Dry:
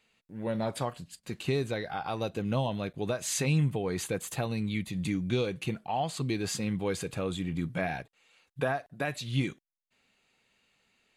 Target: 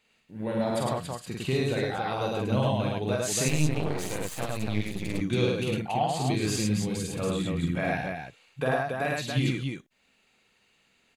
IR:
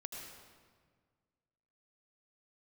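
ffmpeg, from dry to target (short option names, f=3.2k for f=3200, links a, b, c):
-filter_complex "[0:a]asettb=1/sr,asplit=3[a][b][c];[a]atrim=end=6.484[d];[b]atrim=start=6.48:end=7.19,asetpts=PTS-STARTPTS,afade=t=in:d=0.004:c=qsin,afade=t=out:st=0.706:d=0.004:c=qsin,acrossover=split=320|3000[e][f][g];[f]acompressor=threshold=-44dB:ratio=6[h];[e][h][g]amix=inputs=3:normalize=0[i];[c]atrim=start=7.186[j];[d][i]acrossfade=d=0.004:c1=hsin:c2=qsin[k];[k][j]acrossfade=d=0.004:c1=qsin:c2=hsin,aecho=1:1:46.65|105|279.9:0.794|0.891|0.631,asettb=1/sr,asplit=3[l][m][n];[l]atrim=end=3.484[o];[m]atrim=start=3.48:end=5.21,asetpts=PTS-STARTPTS,afade=t=in:d=0.004:c=qsin,afade=t=out:st=1.726:d=0.004:c=qsin,aeval=exprs='max(val(0),0)':c=same[p];[n]atrim=start=5.206[q];[o][p]acrossfade=d=0.004:c1=hsin:c2=qsin[r];[r][q]acrossfade=d=0.004:c1=qsin:c2=hsin"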